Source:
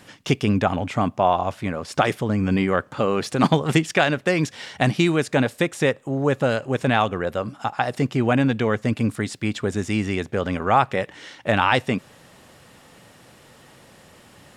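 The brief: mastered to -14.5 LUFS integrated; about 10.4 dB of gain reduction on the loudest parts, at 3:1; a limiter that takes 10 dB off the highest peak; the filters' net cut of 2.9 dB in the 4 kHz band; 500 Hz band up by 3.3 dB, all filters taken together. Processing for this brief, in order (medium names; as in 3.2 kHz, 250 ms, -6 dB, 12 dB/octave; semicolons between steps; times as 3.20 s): peaking EQ 500 Hz +4 dB; peaking EQ 4 kHz -4 dB; compression 3:1, threshold -26 dBFS; trim +17 dB; peak limiter -2.5 dBFS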